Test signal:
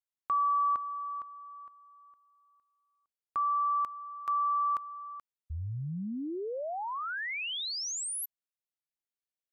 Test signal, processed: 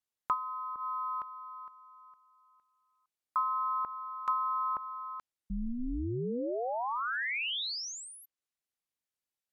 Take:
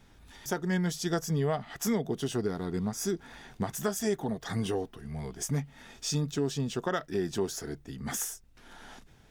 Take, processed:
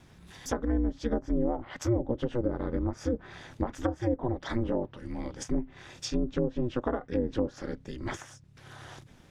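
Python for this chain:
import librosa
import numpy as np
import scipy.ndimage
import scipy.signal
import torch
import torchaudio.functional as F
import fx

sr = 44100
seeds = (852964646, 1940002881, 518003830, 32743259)

y = fx.env_lowpass_down(x, sr, base_hz=550.0, full_db=-25.0)
y = y * np.sin(2.0 * np.pi * 120.0 * np.arange(len(y)) / sr)
y = F.gain(torch.from_numpy(y), 5.0).numpy()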